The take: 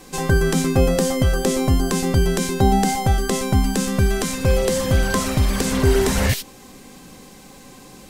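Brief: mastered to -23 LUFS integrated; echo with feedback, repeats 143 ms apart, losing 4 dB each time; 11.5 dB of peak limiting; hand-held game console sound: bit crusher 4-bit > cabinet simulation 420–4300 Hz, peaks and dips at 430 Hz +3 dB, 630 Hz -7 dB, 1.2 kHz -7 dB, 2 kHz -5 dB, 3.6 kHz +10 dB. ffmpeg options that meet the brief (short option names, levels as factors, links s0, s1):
-af "alimiter=limit=0.15:level=0:latency=1,aecho=1:1:143|286|429|572|715|858|1001|1144|1287:0.631|0.398|0.25|0.158|0.0994|0.0626|0.0394|0.0249|0.0157,acrusher=bits=3:mix=0:aa=0.000001,highpass=420,equalizer=f=430:t=q:w=4:g=3,equalizer=f=630:t=q:w=4:g=-7,equalizer=f=1200:t=q:w=4:g=-7,equalizer=f=2000:t=q:w=4:g=-5,equalizer=f=3600:t=q:w=4:g=10,lowpass=f=4300:w=0.5412,lowpass=f=4300:w=1.3066,volume=1.26"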